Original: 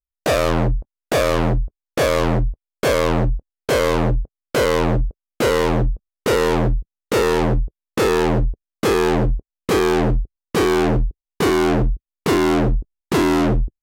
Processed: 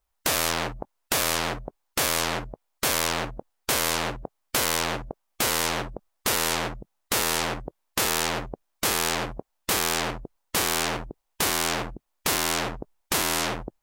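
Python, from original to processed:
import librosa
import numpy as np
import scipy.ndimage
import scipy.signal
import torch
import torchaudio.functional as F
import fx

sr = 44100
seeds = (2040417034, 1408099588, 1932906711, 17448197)

y = fx.peak_eq(x, sr, hz=840.0, db=11.5, octaves=1.4)
y = fx.spectral_comp(y, sr, ratio=4.0)
y = F.gain(torch.from_numpy(y), -3.5).numpy()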